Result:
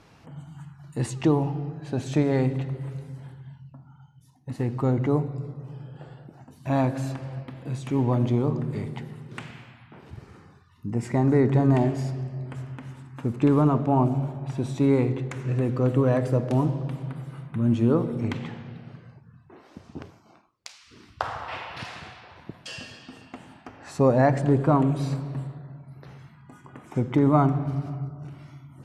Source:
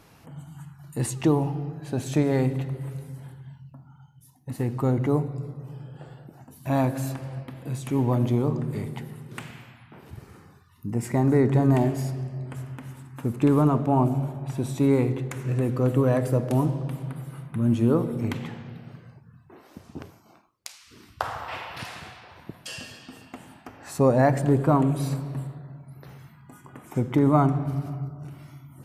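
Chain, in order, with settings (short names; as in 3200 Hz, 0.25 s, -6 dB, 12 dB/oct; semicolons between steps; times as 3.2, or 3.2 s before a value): LPF 6300 Hz 12 dB/oct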